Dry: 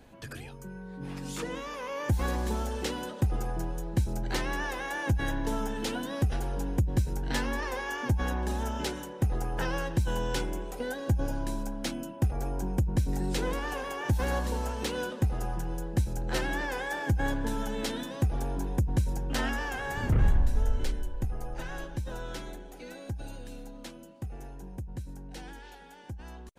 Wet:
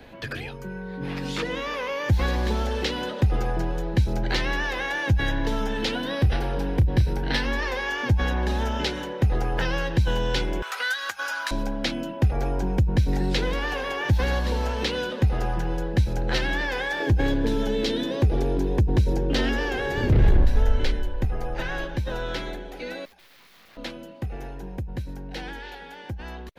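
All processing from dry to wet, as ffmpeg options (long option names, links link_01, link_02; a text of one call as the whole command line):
ffmpeg -i in.wav -filter_complex "[0:a]asettb=1/sr,asplit=3[link_01][link_02][link_03];[link_01]atrim=end=6.014[link_04];[link_02]atrim=start=6.01:end=7.45,asetpts=PTS-STARTPTS,afade=type=in:duration=0.004:curve=qsin,afade=type=out:start_time=1.436:duration=0.004:curve=qsin,equalizer=frequency=6900:width=6.2:gain=-11,asplit=2[link_05][link_06];[link_06]adelay=31,volume=-12.5dB[link_07];[link_05][link_07]amix=inputs=2:normalize=0,atrim=end_sample=63504[link_08];[link_03]atrim=start=7.446[link_09];[link_04][link_08]acrossfade=duration=0.004:curve1=hsin:curve2=qsin[link_10];[link_10][link_09]acrossfade=duration=0.004:curve1=qsin:curve2=hsin,asettb=1/sr,asplit=3[link_11][link_12][link_13];[link_11]atrim=end=10.624[link_14];[link_12]atrim=start=10.62:end=11.51,asetpts=PTS-STARTPTS,afade=type=in:duration=0.004:curve=qsin,afade=type=out:start_time=0.886:duration=0.004:curve=qsin,highpass=frequency=1300:width_type=q:width=4.8,aemphasis=mode=production:type=75kf[link_15];[link_13]atrim=start=11.506[link_16];[link_14][link_15]acrossfade=duration=0.004:curve1=hsin:curve2=qsin[link_17];[link_17][link_16]acrossfade=duration=0.004:curve1=qsin:curve2=hsin,asettb=1/sr,asplit=3[link_18][link_19][link_20];[link_18]atrim=end=17.004[link_21];[link_19]atrim=start=17:end=20.45,asetpts=PTS-STARTPTS,afade=type=in:duration=0.004:curve=qsin,afade=type=out:start_time=3.446:duration=0.004:curve=qsin,equalizer=frequency=380:width_type=o:width=1.2:gain=14,asoftclip=type=hard:threshold=-17.5dB[link_22];[link_20]atrim=start=20.446[link_23];[link_21][link_22]acrossfade=duration=0.004:curve1=hsin:curve2=qsin[link_24];[link_24][link_23]acrossfade=duration=0.004:curve1=qsin:curve2=hsin,asettb=1/sr,asplit=3[link_25][link_26][link_27];[link_25]atrim=end=23.054[link_28];[link_26]atrim=start=23.05:end=23.77,asetpts=PTS-STARTPTS,afade=type=in:duration=0.004:curve=qsin,afade=type=out:start_time=0.716:duration=0.004:curve=qsin,highpass=540,aeval=exprs='(tanh(631*val(0)+0.5)-tanh(0.5))/631':channel_layout=same,aeval=exprs='(mod(631*val(0)+1,2)-1)/631':channel_layout=same[link_29];[link_27]atrim=start=23.766[link_30];[link_28][link_29]acrossfade=duration=0.004:curve1=hsin:curve2=qsin[link_31];[link_31][link_30]acrossfade=duration=0.004:curve1=qsin:curve2=hsin,acrossover=split=8200[link_32][link_33];[link_33]acompressor=threshold=-58dB:ratio=4:attack=1:release=60[link_34];[link_32][link_34]amix=inputs=2:normalize=0,equalizer=frequency=500:width_type=o:width=1:gain=4,equalizer=frequency=2000:width_type=o:width=1:gain=6,equalizer=frequency=4000:width_type=o:width=1:gain=6,equalizer=frequency=8000:width_type=o:width=1:gain=-10,acrossover=split=190|3000[link_35][link_36][link_37];[link_36]acompressor=threshold=-33dB:ratio=6[link_38];[link_35][link_38][link_37]amix=inputs=3:normalize=0,volume=6.5dB" out.wav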